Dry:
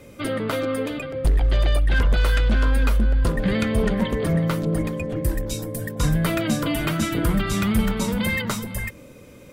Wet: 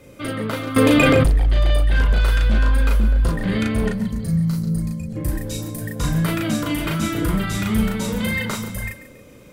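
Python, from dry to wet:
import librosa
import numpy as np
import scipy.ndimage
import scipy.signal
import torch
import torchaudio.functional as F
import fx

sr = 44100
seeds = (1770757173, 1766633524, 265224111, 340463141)

y = fx.spec_box(x, sr, start_s=3.9, length_s=1.26, low_hz=240.0, high_hz=3900.0, gain_db=-14)
y = fx.doubler(y, sr, ms=37.0, db=-2)
y = fx.echo_thinned(y, sr, ms=140, feedback_pct=33, hz=420.0, wet_db=-13)
y = fx.env_flatten(y, sr, amount_pct=100, at=(0.76, 1.38))
y = y * 10.0 ** (-2.0 / 20.0)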